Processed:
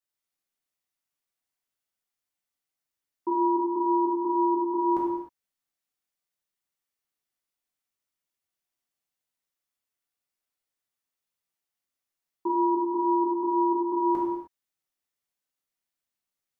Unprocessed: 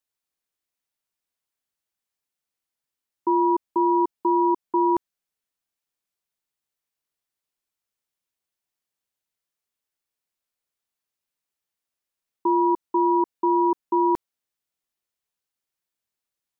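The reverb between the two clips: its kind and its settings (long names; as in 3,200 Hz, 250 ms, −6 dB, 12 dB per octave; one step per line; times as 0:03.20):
reverb whose tail is shaped and stops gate 330 ms falling, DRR −5.5 dB
level −8 dB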